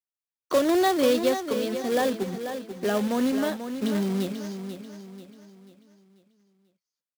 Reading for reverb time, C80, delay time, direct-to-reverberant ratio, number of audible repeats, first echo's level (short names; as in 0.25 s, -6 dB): none, none, 0.489 s, none, 4, -9.0 dB